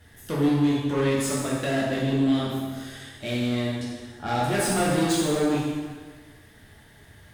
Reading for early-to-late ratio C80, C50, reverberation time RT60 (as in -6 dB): 2.0 dB, -0.5 dB, 1.5 s